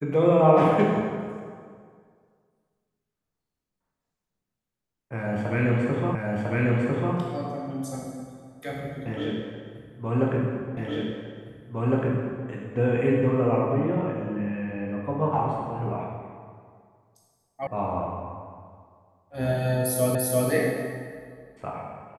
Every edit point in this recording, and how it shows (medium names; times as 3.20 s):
6.15 s: repeat of the last 1 s
10.77 s: repeat of the last 1.71 s
17.67 s: sound stops dead
20.15 s: repeat of the last 0.34 s